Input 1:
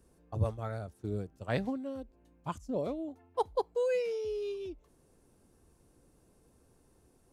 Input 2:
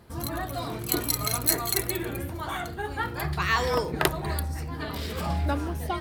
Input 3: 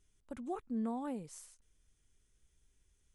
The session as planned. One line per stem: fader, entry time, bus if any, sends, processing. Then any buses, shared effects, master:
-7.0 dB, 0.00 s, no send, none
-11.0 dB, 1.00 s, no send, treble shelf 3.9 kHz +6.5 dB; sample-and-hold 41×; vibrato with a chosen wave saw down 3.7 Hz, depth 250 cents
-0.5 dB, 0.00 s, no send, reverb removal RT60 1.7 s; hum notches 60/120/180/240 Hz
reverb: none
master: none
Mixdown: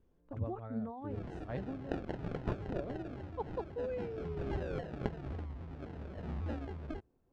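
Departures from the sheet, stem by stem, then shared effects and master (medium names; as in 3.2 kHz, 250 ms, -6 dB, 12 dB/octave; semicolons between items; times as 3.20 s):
stem 2: missing treble shelf 3.9 kHz +6.5 dB; master: extra tape spacing loss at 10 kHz 33 dB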